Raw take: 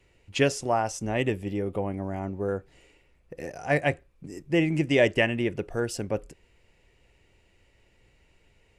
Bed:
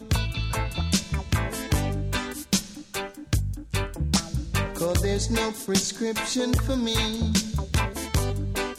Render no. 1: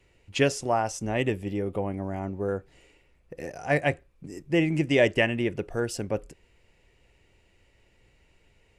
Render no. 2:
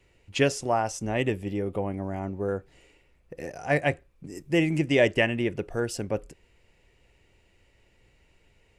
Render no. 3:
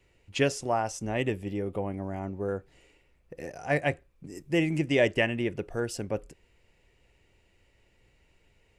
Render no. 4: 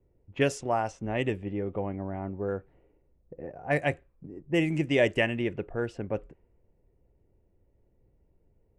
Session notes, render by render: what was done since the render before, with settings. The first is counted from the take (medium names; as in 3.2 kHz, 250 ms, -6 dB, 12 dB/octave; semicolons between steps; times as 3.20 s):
no audible change
4.35–4.78 s: treble shelf 5.9 kHz +8.5 dB
trim -2.5 dB
level-controlled noise filter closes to 510 Hz, open at -22 dBFS; peaking EQ 4.9 kHz -5 dB 0.5 oct